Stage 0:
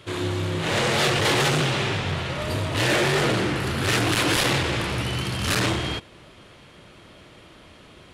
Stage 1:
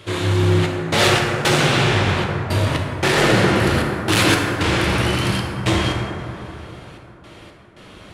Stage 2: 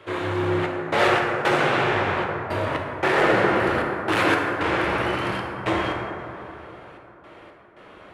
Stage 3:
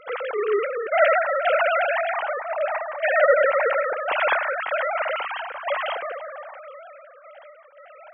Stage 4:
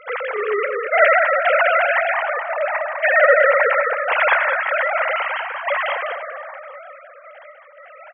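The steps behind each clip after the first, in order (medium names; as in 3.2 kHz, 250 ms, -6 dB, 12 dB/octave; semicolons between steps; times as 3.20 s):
trance gate "xxxxx..xx..x" 114 bpm -60 dB; plate-style reverb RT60 3.1 s, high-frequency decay 0.35×, DRR 0 dB; trim +4.5 dB
three-band isolator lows -13 dB, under 330 Hz, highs -17 dB, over 2.3 kHz
formants replaced by sine waves
ten-band graphic EQ 250 Hz -7 dB, 500 Hz +5 dB, 1 kHz +4 dB, 2 kHz +10 dB; on a send: delay 202 ms -8.5 dB; on the sum: trim -2.5 dB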